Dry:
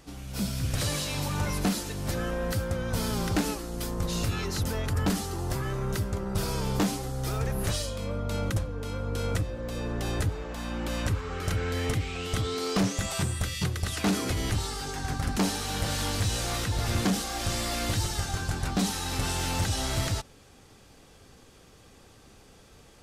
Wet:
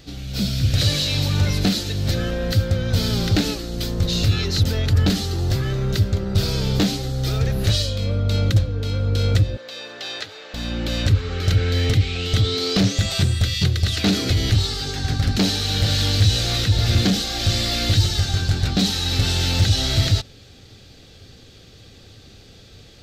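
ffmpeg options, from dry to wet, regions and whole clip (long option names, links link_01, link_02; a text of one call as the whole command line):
ffmpeg -i in.wav -filter_complex "[0:a]asettb=1/sr,asplit=3[link_01][link_02][link_03];[link_01]atrim=end=9.574[link_04];[link_02]atrim=start=9.57:end=10.54,asetpts=PTS-STARTPTS,afade=type=in:duration=0.004:curve=qsin,afade=type=out:start_time=0.966:duration=0.004:curve=qsin,highpass=750,acrossover=split=6200[link_05][link_06];[link_06]acompressor=threshold=-56dB:ratio=4:attack=1:release=60[link_07];[link_05][link_07]amix=inputs=2:normalize=0[link_08];[link_03]atrim=start=10.536[link_09];[link_04][link_08]acrossfade=duration=0.004:curve1=hsin:curve2=qsin[link_10];[link_10][link_09]acrossfade=duration=0.004:curve1=qsin:curve2=hsin,equalizer=frequency=100:width_type=o:width=0.67:gain=8,equalizer=frequency=1000:width_type=o:width=0.67:gain=-11,equalizer=frequency=4000:width_type=o:width=0.67:gain=10,equalizer=frequency=10000:width_type=o:width=0.67:gain=-11,acontrast=64" out.wav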